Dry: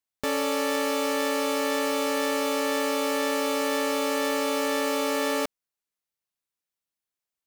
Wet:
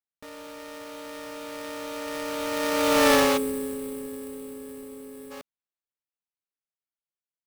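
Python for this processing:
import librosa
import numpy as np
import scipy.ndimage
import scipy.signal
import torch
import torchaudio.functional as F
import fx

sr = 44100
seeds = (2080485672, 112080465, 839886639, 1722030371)

p1 = fx.doppler_pass(x, sr, speed_mps=15, closest_m=2.1, pass_at_s=3.1)
p2 = fx.sample_hold(p1, sr, seeds[0], rate_hz=7100.0, jitter_pct=20)
p3 = fx.spec_box(p2, sr, start_s=3.37, length_s=1.94, low_hz=520.0, high_hz=7600.0, gain_db=-16)
p4 = (np.mod(10.0 ** (24.0 / 20.0) * p3 + 1.0, 2.0) - 1.0) / 10.0 ** (24.0 / 20.0)
p5 = p3 + F.gain(torch.from_numpy(p4), -10.5).numpy()
y = F.gain(torch.from_numpy(p5), 8.0).numpy()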